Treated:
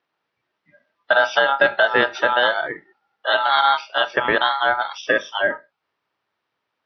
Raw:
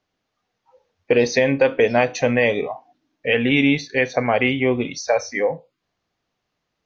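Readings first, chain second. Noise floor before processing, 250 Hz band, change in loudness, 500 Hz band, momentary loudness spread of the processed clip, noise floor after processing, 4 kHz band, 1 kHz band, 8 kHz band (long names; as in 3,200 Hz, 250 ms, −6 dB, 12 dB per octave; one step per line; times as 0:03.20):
−78 dBFS, −13.0 dB, +0.5 dB, −3.0 dB, 8 LU, −78 dBFS, +6.5 dB, +8.0 dB, can't be measured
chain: hearing-aid frequency compression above 2,800 Hz 1.5 to 1
ring modulation 1,100 Hz
band-pass filter 120–4,600 Hz
level +3 dB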